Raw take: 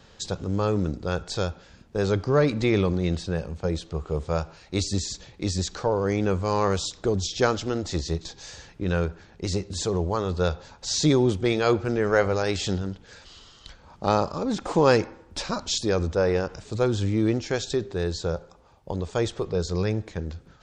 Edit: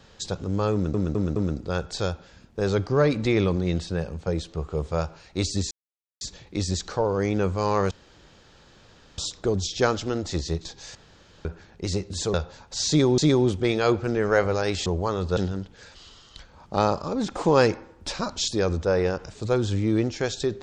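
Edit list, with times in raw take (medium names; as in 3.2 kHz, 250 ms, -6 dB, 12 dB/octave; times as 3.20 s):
0.73 s: stutter 0.21 s, 4 plays
5.08 s: insert silence 0.50 s
6.78 s: insert room tone 1.27 s
8.55–9.05 s: room tone
9.94–10.45 s: move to 12.67 s
10.99–11.29 s: loop, 2 plays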